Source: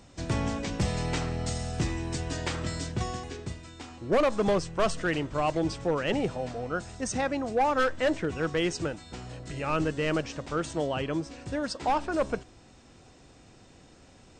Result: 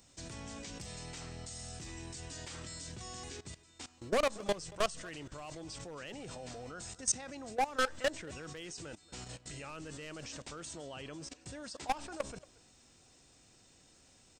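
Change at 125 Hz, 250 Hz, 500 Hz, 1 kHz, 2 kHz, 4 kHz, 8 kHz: -15.5, -15.5, -11.0, -9.5, -8.5, -5.5, 0.0 dB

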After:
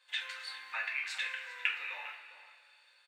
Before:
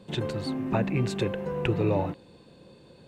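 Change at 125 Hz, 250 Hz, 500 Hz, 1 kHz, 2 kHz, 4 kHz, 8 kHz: under -40 dB, under -40 dB, -31.0 dB, -11.5 dB, +5.0 dB, +0.5 dB, -4.5 dB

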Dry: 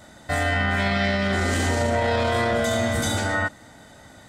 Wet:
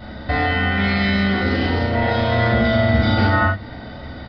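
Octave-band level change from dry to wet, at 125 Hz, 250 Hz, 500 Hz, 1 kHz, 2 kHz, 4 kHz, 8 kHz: +7.0 dB, +7.0 dB, +2.5 dB, +4.0 dB, +4.0 dB, +3.5 dB, under -25 dB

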